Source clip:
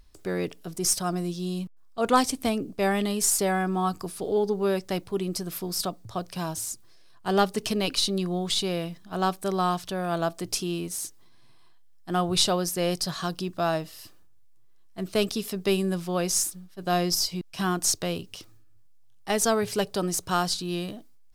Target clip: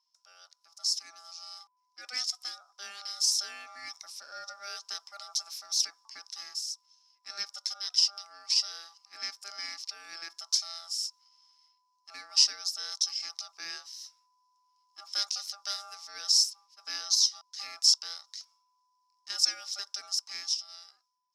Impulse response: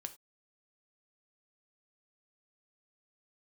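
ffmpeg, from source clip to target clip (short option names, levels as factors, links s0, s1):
-af "aeval=exprs='val(0)*sin(2*PI*1000*n/s)':c=same,dynaudnorm=f=120:g=17:m=5.01,bandpass=f=5300:t=q:w=13:csg=0,volume=2"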